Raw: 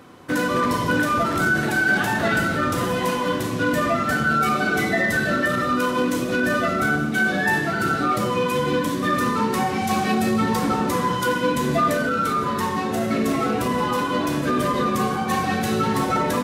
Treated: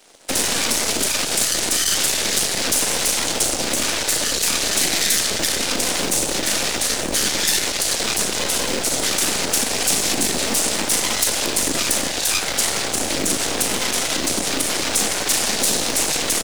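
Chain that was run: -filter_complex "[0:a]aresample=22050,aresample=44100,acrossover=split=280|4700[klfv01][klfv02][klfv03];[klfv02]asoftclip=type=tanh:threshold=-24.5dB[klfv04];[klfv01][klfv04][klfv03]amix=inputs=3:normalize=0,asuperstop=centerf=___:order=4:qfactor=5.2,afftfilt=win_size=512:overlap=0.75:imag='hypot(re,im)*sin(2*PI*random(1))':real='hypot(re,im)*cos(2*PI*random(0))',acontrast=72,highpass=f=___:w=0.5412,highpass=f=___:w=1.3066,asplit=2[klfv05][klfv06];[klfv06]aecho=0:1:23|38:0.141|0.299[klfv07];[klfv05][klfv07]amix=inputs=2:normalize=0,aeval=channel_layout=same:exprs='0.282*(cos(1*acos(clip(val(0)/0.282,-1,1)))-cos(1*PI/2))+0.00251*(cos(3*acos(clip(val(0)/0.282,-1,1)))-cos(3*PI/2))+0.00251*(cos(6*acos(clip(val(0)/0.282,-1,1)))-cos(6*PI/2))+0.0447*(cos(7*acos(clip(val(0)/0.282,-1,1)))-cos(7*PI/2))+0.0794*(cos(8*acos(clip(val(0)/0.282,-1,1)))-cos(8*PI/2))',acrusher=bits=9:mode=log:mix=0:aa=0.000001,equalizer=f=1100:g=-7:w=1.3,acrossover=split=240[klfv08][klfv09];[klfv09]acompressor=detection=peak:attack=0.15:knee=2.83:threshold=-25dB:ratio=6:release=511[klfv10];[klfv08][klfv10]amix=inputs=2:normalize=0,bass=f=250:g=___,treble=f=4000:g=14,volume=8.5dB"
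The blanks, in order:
1400, 190, 190, -15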